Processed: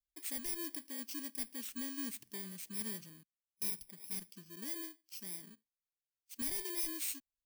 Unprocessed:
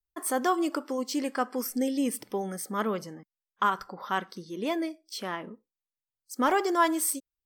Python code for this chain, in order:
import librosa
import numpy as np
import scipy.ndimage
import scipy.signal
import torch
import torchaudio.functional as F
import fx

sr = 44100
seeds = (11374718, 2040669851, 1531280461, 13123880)

y = fx.bit_reversed(x, sr, seeds[0], block=32)
y = 10.0 ** (-20.5 / 20.0) * (np.abs((y / 10.0 ** (-20.5 / 20.0) + 3.0) % 4.0 - 2.0) - 1.0)
y = fx.tone_stack(y, sr, knobs='6-0-2')
y = y * 10.0 ** (5.0 / 20.0)